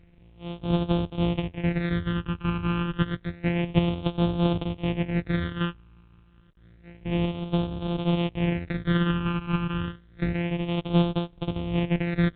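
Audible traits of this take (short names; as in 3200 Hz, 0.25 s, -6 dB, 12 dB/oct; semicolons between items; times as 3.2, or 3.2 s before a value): a buzz of ramps at a fixed pitch in blocks of 256 samples; phasing stages 12, 0.29 Hz, lowest notch 620–1900 Hz; A-law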